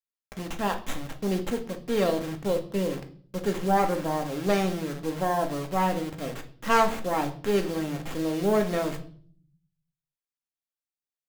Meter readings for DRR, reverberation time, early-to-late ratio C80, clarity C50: 4.5 dB, 0.50 s, 18.5 dB, 13.0 dB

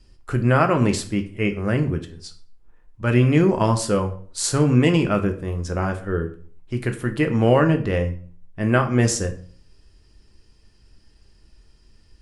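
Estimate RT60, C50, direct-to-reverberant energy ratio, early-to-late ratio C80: 0.45 s, 12.5 dB, 5.0 dB, 17.0 dB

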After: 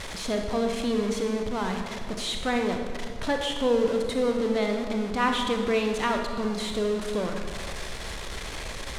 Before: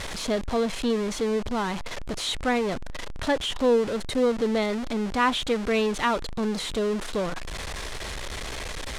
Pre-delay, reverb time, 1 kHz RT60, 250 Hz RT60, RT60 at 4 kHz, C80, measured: 29 ms, 1.8 s, 1.7 s, 2.3 s, 1.3 s, 6.0 dB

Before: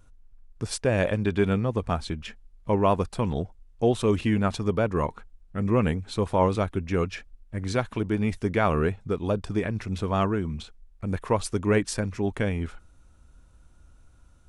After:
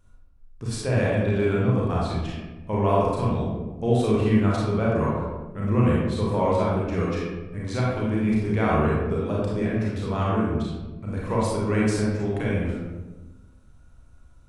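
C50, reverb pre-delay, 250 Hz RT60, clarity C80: -2.0 dB, 30 ms, 1.5 s, 1.5 dB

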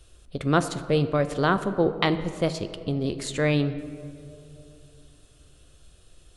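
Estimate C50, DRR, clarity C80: 12.0 dB, 10.5 dB, 13.5 dB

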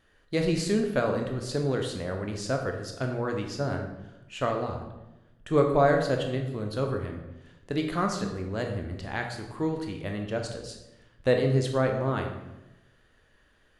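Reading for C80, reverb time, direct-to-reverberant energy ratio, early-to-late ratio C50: 8.5 dB, 1.0 s, 3.0 dB, 6.0 dB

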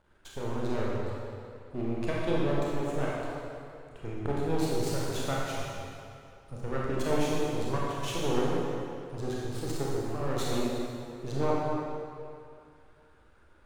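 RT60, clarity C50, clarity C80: 2.5 s, -3.0 dB, -1.0 dB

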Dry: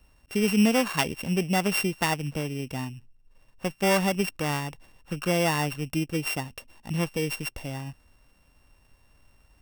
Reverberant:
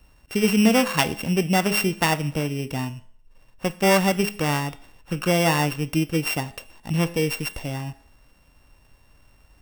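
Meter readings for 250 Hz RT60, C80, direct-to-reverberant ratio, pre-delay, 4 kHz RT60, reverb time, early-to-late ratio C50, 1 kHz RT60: 0.55 s, 20.0 dB, 11.5 dB, 5 ms, 0.55 s, 0.55 s, 17.0 dB, 0.55 s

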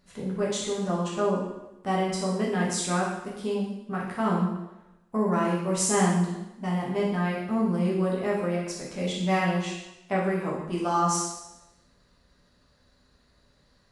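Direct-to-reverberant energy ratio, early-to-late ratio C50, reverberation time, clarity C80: -5.0 dB, 2.5 dB, 1.0 s, 5.0 dB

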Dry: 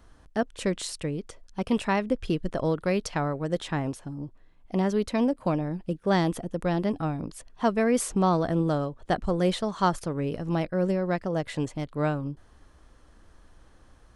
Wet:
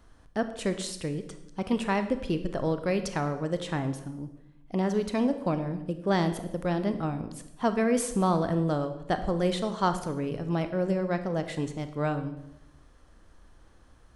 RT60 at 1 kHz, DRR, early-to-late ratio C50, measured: 0.80 s, 9.0 dB, 11.0 dB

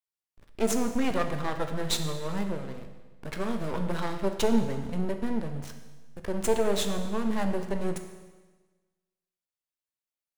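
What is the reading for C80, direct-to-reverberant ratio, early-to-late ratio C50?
9.5 dB, 5.5 dB, 8.0 dB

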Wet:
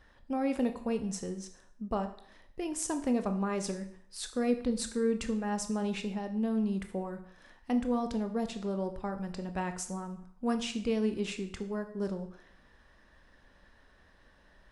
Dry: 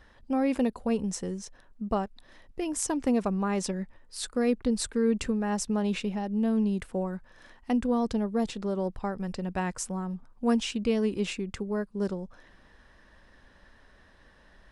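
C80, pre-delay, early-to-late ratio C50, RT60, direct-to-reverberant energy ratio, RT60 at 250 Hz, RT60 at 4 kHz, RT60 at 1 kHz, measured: 14.5 dB, 19 ms, 11.5 dB, 0.65 s, 7.5 dB, 0.55 s, 0.55 s, 0.65 s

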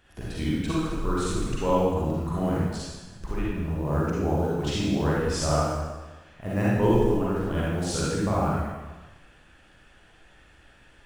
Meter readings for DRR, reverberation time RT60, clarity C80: -7.0 dB, 1.2 s, 0.0 dB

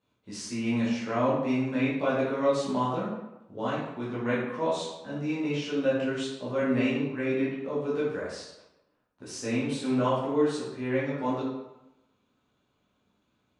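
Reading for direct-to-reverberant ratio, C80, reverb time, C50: -9.5 dB, 4.5 dB, 0.95 s, 1.0 dB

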